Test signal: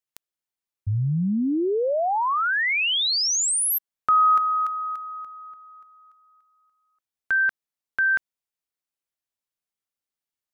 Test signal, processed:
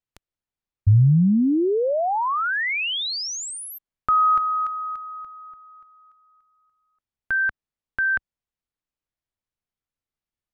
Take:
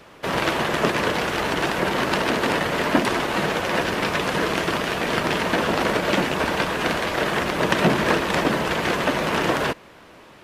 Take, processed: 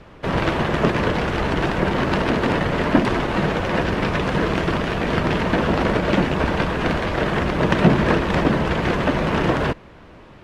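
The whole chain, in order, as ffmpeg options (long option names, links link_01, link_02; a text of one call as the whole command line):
ffmpeg -i in.wav -af "aemphasis=mode=reproduction:type=bsi" out.wav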